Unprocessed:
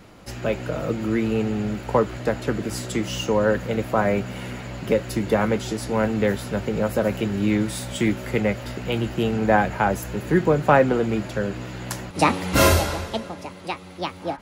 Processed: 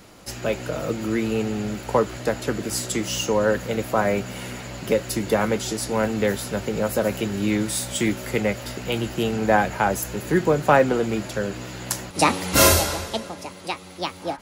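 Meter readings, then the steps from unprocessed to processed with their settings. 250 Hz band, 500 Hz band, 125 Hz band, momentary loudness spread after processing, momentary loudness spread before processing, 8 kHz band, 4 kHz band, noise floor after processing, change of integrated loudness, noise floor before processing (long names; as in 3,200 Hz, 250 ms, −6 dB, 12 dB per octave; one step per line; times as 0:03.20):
−1.5 dB, 0.0 dB, −3.0 dB, 12 LU, 13 LU, +7.5 dB, +3.5 dB, −41 dBFS, 0.0 dB, −41 dBFS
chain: bass and treble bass −3 dB, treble +8 dB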